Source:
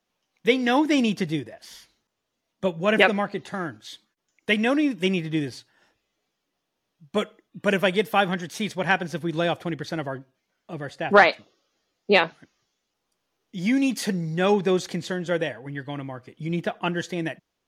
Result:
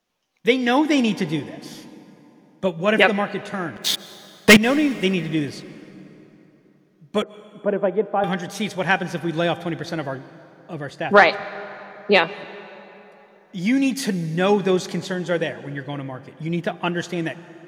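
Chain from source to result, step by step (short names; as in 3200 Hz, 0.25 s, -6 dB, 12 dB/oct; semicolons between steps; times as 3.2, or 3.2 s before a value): de-hum 397.7 Hz, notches 29; 3.76–4.57 sample leveller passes 5; 7.22–8.24 Butterworth band-pass 460 Hz, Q 0.62; plate-style reverb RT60 3.7 s, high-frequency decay 0.6×, pre-delay 0.115 s, DRR 16.5 dB; gain +2.5 dB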